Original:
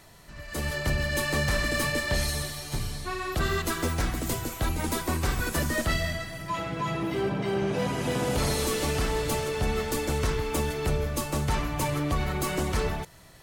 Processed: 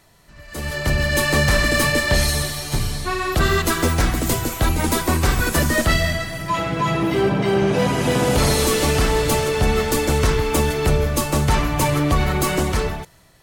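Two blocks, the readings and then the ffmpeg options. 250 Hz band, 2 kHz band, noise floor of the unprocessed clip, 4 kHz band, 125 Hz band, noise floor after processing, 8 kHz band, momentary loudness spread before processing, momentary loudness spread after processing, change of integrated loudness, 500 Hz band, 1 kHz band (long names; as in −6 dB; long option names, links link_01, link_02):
+9.0 dB, +9.0 dB, −45 dBFS, +9.0 dB, +9.0 dB, −46 dBFS, +9.0 dB, 7 LU, 7 LU, +9.0 dB, +9.0 dB, +9.0 dB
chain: -af "dynaudnorm=framelen=170:gausssize=9:maxgain=12dB,volume=-2dB"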